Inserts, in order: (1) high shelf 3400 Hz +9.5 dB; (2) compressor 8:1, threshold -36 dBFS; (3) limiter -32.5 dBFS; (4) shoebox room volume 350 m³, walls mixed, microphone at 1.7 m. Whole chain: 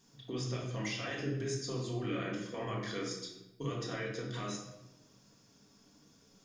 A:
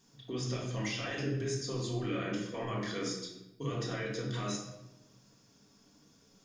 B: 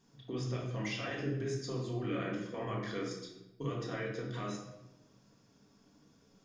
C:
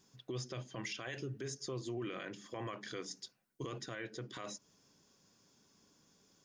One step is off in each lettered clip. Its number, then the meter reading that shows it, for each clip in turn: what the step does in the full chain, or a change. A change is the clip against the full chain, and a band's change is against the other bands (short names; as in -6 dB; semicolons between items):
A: 2, loudness change +2.0 LU; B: 1, 8 kHz band -6.5 dB; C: 4, echo-to-direct 3.0 dB to none